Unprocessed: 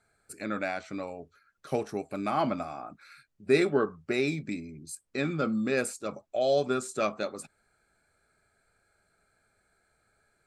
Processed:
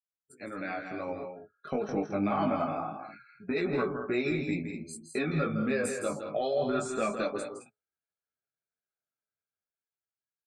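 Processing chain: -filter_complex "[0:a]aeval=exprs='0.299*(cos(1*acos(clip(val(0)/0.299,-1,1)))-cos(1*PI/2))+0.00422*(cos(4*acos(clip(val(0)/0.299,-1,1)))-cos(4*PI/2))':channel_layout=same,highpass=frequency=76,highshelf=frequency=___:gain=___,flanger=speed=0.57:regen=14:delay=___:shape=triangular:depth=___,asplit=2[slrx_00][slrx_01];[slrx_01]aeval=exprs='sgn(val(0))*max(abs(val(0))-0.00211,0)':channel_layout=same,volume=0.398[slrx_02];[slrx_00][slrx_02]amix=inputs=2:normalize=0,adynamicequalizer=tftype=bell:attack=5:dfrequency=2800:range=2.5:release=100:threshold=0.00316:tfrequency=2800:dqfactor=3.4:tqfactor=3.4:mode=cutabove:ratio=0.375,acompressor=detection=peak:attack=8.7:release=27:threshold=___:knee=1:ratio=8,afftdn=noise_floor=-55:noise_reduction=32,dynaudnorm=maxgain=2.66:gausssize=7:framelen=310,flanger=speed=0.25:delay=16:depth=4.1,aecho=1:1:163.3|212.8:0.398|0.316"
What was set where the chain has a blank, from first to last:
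6600, -9, 3.9, 9.6, 0.0178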